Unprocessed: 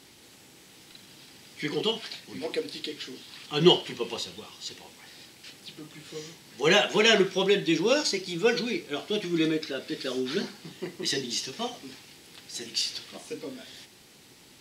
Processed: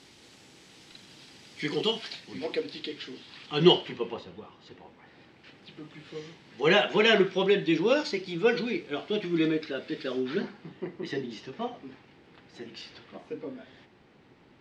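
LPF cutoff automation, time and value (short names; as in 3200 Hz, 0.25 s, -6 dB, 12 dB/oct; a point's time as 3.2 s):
1.96 s 6700 Hz
2.69 s 3800 Hz
3.76 s 3800 Hz
4.21 s 1500 Hz
4.96 s 1500 Hz
5.99 s 3000 Hz
9.96 s 3000 Hz
10.79 s 1700 Hz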